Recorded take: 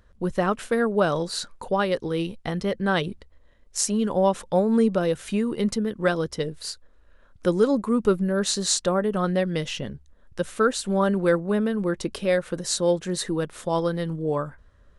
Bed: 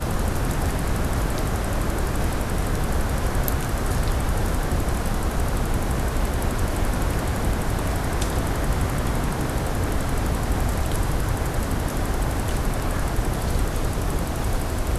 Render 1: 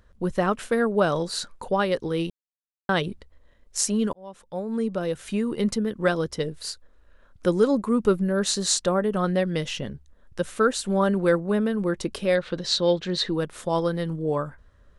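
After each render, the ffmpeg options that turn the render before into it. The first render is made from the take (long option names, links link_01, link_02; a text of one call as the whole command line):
ffmpeg -i in.wav -filter_complex "[0:a]asettb=1/sr,asplit=3[link_01][link_02][link_03];[link_01]atrim=end=12.354[link_04];[link_02]atrim=start=12.35:end=13.34,asetpts=PTS-STARTPTS,afade=type=in:duration=0.004:curve=qsin,afade=type=out:start_time=0.986:duration=0.004:curve=qsin,lowpass=frequency=4000:width_type=q:width=2.5[link_05];[link_03]atrim=start=13.336[link_06];[link_04][link_05]acrossfade=duration=0.004:curve1=hsin:curve2=qsin[link_07];[link_07][link_06]acrossfade=duration=0.004:curve1=qsin:curve2=hsin,asplit=4[link_08][link_09][link_10][link_11];[link_08]atrim=end=2.3,asetpts=PTS-STARTPTS,afade=type=out:start_time=2.296:duration=0.004:curve=hsin[link_12];[link_09]atrim=start=2.3:end=2.89,asetpts=PTS-STARTPTS,volume=0[link_13];[link_10]atrim=start=2.89:end=4.13,asetpts=PTS-STARTPTS,afade=type=in:duration=0.004:curve=hsin,afade=type=out:start_time=1.236:duration=0.004:curve=hsin[link_14];[link_11]atrim=start=4.13,asetpts=PTS-STARTPTS,afade=type=in:duration=1.47[link_15];[link_12][link_13][link_14][link_15]concat=n=4:v=0:a=1" out.wav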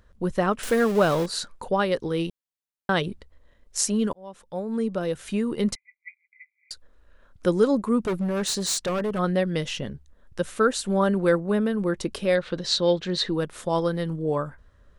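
ffmpeg -i in.wav -filter_complex "[0:a]asettb=1/sr,asplit=3[link_01][link_02][link_03];[link_01]atrim=end=0.634[link_04];[link_02]atrim=start=0.63:end=1.26,asetpts=PTS-STARTPTS,afade=type=in:duration=0.004:curve=qsin,afade=type=out:start_time=0.626:duration=0.004:curve=qsin,aeval=exprs='val(0)+0.5*0.0376*sgn(val(0))':channel_layout=same[link_05];[link_03]atrim=start=1.256[link_06];[link_04][link_05]acrossfade=duration=0.004:curve1=hsin:curve2=qsin[link_07];[link_07][link_06]acrossfade=duration=0.004:curve1=qsin:curve2=hsin,asettb=1/sr,asplit=3[link_08][link_09][link_10];[link_08]atrim=end=5.754[link_11];[link_09]atrim=start=5.75:end=6.71,asetpts=PTS-STARTPTS,afade=type=in:duration=0.004:curve=qsin,afade=type=out:start_time=0.956:duration=0.004:curve=qsin,asuperpass=centerf=2200:order=20:qfactor=4.7[link_12];[link_10]atrim=start=6.706[link_13];[link_11][link_12]acrossfade=duration=0.004:curve1=hsin:curve2=qsin[link_14];[link_14][link_13]acrossfade=duration=0.004:curve1=qsin:curve2=hsin,asettb=1/sr,asplit=3[link_15][link_16][link_17];[link_15]atrim=end=8.004[link_18];[link_16]atrim=start=8:end=9.19,asetpts=PTS-STARTPTS,afade=type=in:duration=0.004:curve=qsin,afade=type=out:start_time=1.186:duration=0.004:curve=qsin,asoftclip=type=hard:threshold=-22.5dB[link_19];[link_17]atrim=start=9.186[link_20];[link_18][link_19]acrossfade=duration=0.004:curve1=hsin:curve2=qsin[link_21];[link_21][link_20]acrossfade=duration=0.004:curve1=qsin:curve2=hsin" out.wav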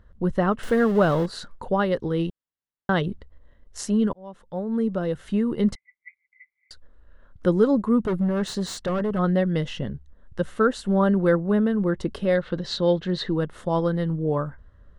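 ffmpeg -i in.wav -af "bass=frequency=250:gain=5,treble=frequency=4000:gain=-12,bandreject=frequency=2400:width=5.8" out.wav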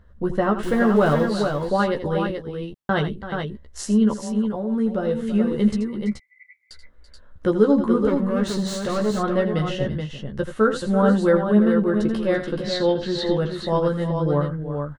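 ffmpeg -i in.wav -filter_complex "[0:a]asplit=2[link_01][link_02];[link_02]adelay=14,volume=-4.5dB[link_03];[link_01][link_03]amix=inputs=2:normalize=0,aecho=1:1:82|334|429:0.282|0.224|0.501" out.wav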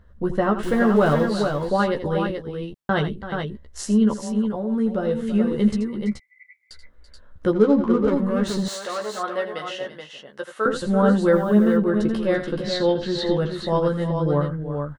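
ffmpeg -i in.wav -filter_complex "[0:a]asettb=1/sr,asplit=3[link_01][link_02][link_03];[link_01]atrim=end=7.524[link_04];[link_02]atrim=start=7.52:end=8.12,asetpts=PTS-STARTPTS,afade=type=in:duration=0.004:curve=qsin,afade=type=out:start_time=0.596:duration=0.004:curve=qsin,adynamicsmooth=sensitivity=5.5:basefreq=2000[link_05];[link_03]atrim=start=8.116[link_06];[link_04][link_05]acrossfade=duration=0.004:curve1=hsin:curve2=qsin[link_07];[link_07][link_06]acrossfade=duration=0.004:curve1=qsin:curve2=hsin,asettb=1/sr,asplit=3[link_08][link_09][link_10];[link_08]atrim=end=8.684[link_11];[link_09]atrim=start=8.68:end=10.66,asetpts=PTS-STARTPTS,afade=type=in:duration=0.004:curve=qsin,afade=type=out:start_time=1.976:duration=0.004:curve=qsin,highpass=600[link_12];[link_10]atrim=start=10.656[link_13];[link_11][link_12]acrossfade=duration=0.004:curve1=hsin:curve2=qsin[link_14];[link_14][link_13]acrossfade=duration=0.004:curve1=qsin:curve2=hsin,asplit=3[link_15][link_16][link_17];[link_15]afade=type=out:start_time=11.31:duration=0.02[link_18];[link_16]acrusher=bits=7:mix=0:aa=0.5,afade=type=in:start_time=11.31:duration=0.02,afade=type=out:start_time=11.76:duration=0.02[link_19];[link_17]afade=type=in:start_time=11.76:duration=0.02[link_20];[link_18][link_19][link_20]amix=inputs=3:normalize=0" out.wav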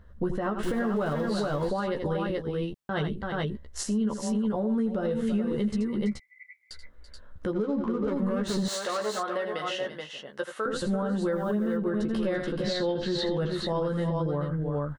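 ffmpeg -i in.wav -af "acompressor=threshold=-22dB:ratio=6,alimiter=limit=-20dB:level=0:latency=1:release=78" out.wav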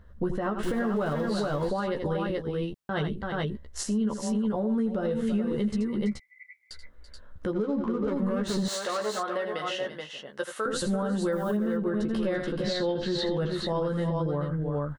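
ffmpeg -i in.wav -filter_complex "[0:a]asettb=1/sr,asplit=3[link_01][link_02][link_03];[link_01]atrim=end=10.404[link_04];[link_02]atrim=start=10.4:end=11.57,asetpts=PTS-STARTPTS,afade=type=in:duration=0.004:curve=qsin,afade=type=out:start_time=1.166:duration=0.004:curve=qsin,highshelf=frequency=5400:gain=10[link_05];[link_03]atrim=start=11.566[link_06];[link_04][link_05]acrossfade=duration=0.004:curve1=hsin:curve2=qsin[link_07];[link_07][link_06]acrossfade=duration=0.004:curve1=qsin:curve2=hsin" out.wav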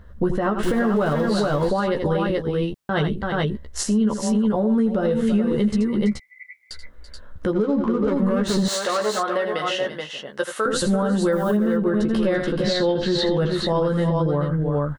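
ffmpeg -i in.wav -af "volume=7.5dB" out.wav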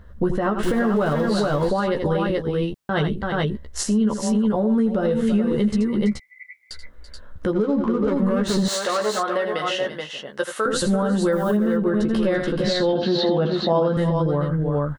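ffmpeg -i in.wav -filter_complex "[0:a]asettb=1/sr,asplit=3[link_01][link_02][link_03];[link_01]atrim=end=12.934[link_04];[link_02]atrim=start=12.93:end=13.97,asetpts=PTS-STARTPTS,afade=type=in:duration=0.004:curve=qsin,afade=type=out:start_time=1.036:duration=0.004:curve=qsin,highpass=140,equalizer=frequency=240:width_type=q:width=4:gain=8,equalizer=frequency=720:width_type=q:width=4:gain=9,equalizer=frequency=1900:width_type=q:width=4:gain=-7,lowpass=frequency=5200:width=0.5412,lowpass=frequency=5200:width=1.3066[link_05];[link_03]atrim=start=13.966[link_06];[link_04][link_05]acrossfade=duration=0.004:curve1=hsin:curve2=qsin[link_07];[link_07][link_06]acrossfade=duration=0.004:curve1=qsin:curve2=hsin" out.wav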